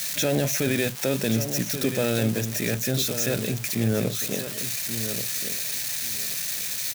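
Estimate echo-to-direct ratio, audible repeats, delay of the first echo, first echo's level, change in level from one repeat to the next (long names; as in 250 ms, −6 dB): −9.5 dB, 2, 1,132 ms, −9.5 dB, −14.5 dB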